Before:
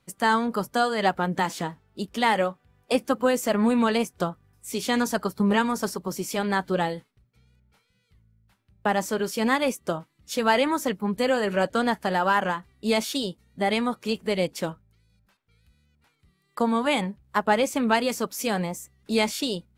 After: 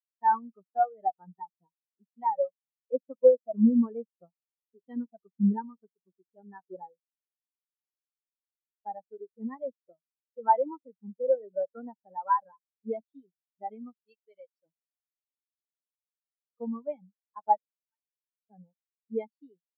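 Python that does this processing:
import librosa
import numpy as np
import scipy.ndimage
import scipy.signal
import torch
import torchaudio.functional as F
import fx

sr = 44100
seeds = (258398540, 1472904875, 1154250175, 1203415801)

y = fx.tilt_shelf(x, sr, db=-7.5, hz=970.0, at=(13.99, 14.66))
y = fx.differentiator(y, sr, at=(17.57, 18.5))
y = fx.low_shelf(y, sr, hz=140.0, db=-8.5)
y = fx.spectral_expand(y, sr, expansion=4.0)
y = y * 10.0 ** (-1.0 / 20.0)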